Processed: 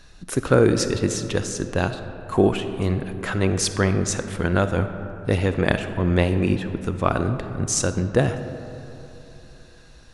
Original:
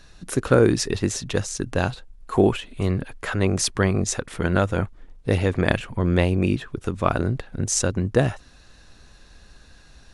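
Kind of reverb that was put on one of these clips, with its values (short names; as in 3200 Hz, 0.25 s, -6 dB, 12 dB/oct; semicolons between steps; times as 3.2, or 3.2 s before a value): digital reverb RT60 3.1 s, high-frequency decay 0.4×, pre-delay 10 ms, DRR 9 dB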